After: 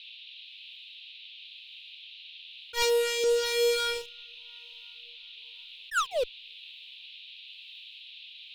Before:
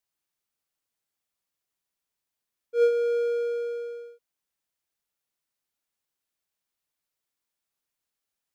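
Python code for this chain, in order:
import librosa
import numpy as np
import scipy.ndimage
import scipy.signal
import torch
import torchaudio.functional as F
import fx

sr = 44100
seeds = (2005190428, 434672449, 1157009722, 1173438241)

p1 = fx.diode_clip(x, sr, knee_db=-19.0)
p2 = p1 + 0.71 * np.pad(p1, (int(1.2 * sr / 1000.0), 0))[:len(p1)]
p3 = fx.highpass(p2, sr, hz=320.0, slope=6, at=(2.82, 3.24))
p4 = p3 + fx.echo_diffused(p3, sr, ms=552, feedback_pct=53, wet_db=-15.5, dry=0)
p5 = fx.spec_paint(p4, sr, seeds[0], shape='fall', start_s=5.91, length_s=0.33, low_hz=460.0, high_hz=1900.0, level_db=-41.0)
p6 = fx.rotary(p5, sr, hz=1.0)
p7 = fx.fuzz(p6, sr, gain_db=46.0, gate_db=-53.0)
p8 = p6 + F.gain(torch.from_numpy(p7), -11.0).numpy()
p9 = fx.phaser_stages(p8, sr, stages=2, low_hz=480.0, high_hz=1400.0, hz=2.8, feedback_pct=40)
p10 = fx.rider(p9, sr, range_db=10, speed_s=0.5)
p11 = fx.dmg_noise_band(p10, sr, seeds[1], low_hz=2500.0, high_hz=4000.0, level_db=-54.0)
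p12 = fx.attack_slew(p11, sr, db_per_s=320.0)
y = F.gain(torch.from_numpy(p12), 6.5).numpy()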